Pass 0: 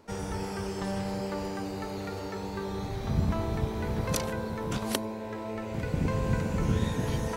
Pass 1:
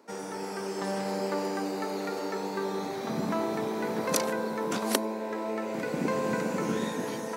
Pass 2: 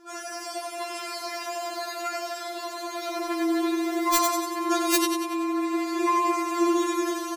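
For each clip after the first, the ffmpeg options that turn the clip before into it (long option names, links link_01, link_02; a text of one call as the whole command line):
ffmpeg -i in.wav -af "equalizer=frequency=3100:width_type=o:width=0.58:gain=-4.5,dynaudnorm=framelen=220:gausssize=7:maxgain=4.5dB,highpass=frequency=220:width=0.5412,highpass=frequency=220:width=1.3066" out.wav
ffmpeg -i in.wav -filter_complex "[0:a]asplit=2[link_01][link_02];[link_02]aecho=0:1:94|188|282|376|470|564|658:0.562|0.292|0.152|0.0791|0.0411|0.0214|0.0111[link_03];[link_01][link_03]amix=inputs=2:normalize=0,aeval=exprs='(mod(4.47*val(0)+1,2)-1)/4.47':channel_layout=same,afftfilt=real='re*4*eq(mod(b,16),0)':imag='im*4*eq(mod(b,16),0)':win_size=2048:overlap=0.75,volume=8dB" out.wav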